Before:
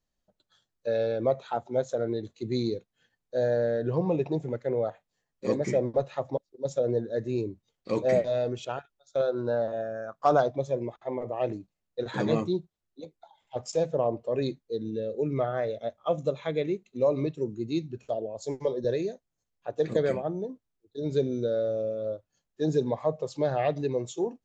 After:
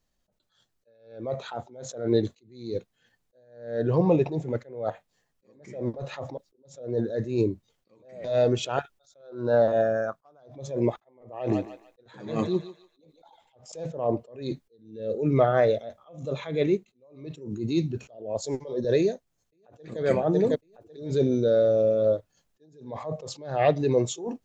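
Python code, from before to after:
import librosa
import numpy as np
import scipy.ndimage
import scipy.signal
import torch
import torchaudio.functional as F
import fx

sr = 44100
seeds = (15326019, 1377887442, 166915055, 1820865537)

y = fx.echo_thinned(x, sr, ms=148, feedback_pct=35, hz=720.0, wet_db=-12.5, at=(11.3, 13.72))
y = fx.echo_throw(y, sr, start_s=18.97, length_s=1.03, ms=550, feedback_pct=35, wet_db=-11.0)
y = fx.rider(y, sr, range_db=5, speed_s=0.5)
y = fx.attack_slew(y, sr, db_per_s=100.0)
y = y * librosa.db_to_amplitude(8.0)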